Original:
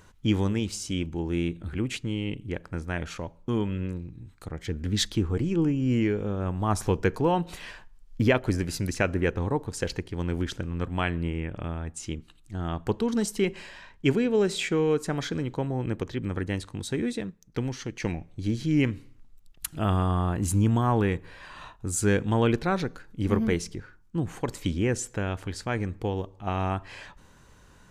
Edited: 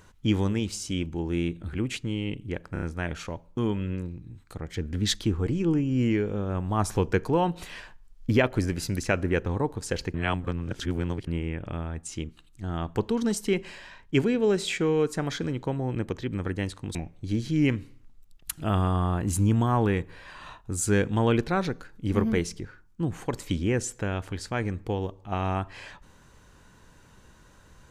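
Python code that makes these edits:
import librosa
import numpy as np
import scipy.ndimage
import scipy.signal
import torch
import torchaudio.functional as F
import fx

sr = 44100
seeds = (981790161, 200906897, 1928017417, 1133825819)

y = fx.edit(x, sr, fx.stutter(start_s=2.73, slice_s=0.03, count=4),
    fx.reverse_span(start_s=10.05, length_s=1.13),
    fx.cut(start_s=16.86, length_s=1.24), tone=tone)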